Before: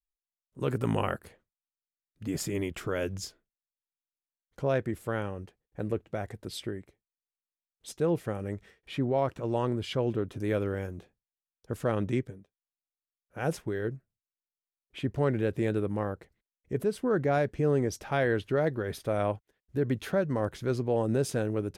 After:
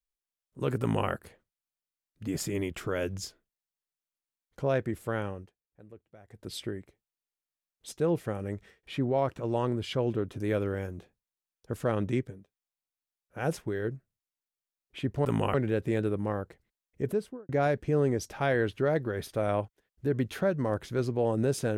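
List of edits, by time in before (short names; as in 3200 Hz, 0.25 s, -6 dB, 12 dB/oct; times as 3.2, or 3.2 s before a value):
0.8–1.09 copy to 15.25
5.31–6.51 dip -19.5 dB, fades 0.24 s
16.79–17.2 studio fade out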